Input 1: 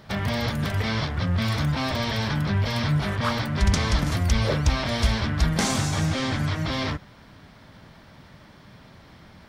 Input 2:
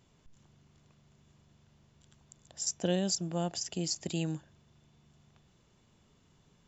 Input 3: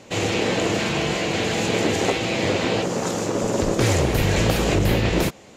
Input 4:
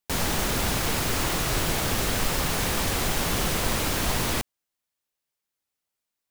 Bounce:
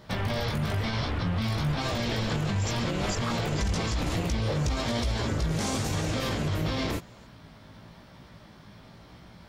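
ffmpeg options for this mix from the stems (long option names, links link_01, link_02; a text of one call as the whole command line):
ffmpeg -i stem1.wav -i stem2.wav -i stem3.wav -i stem4.wav -filter_complex "[0:a]flanger=delay=16.5:depth=2.7:speed=0.98,volume=2dB[link_01];[1:a]volume=-1dB[link_02];[2:a]adelay=1700,volume=-11dB[link_03];[3:a]lowpass=frequency=3100:width=0.5412,lowpass=frequency=3100:width=1.3066,volume=-8.5dB[link_04];[link_01][link_02][link_03][link_04]amix=inputs=4:normalize=0,equalizer=frequency=1800:width=1.5:gain=-3,alimiter=limit=-20dB:level=0:latency=1:release=54" out.wav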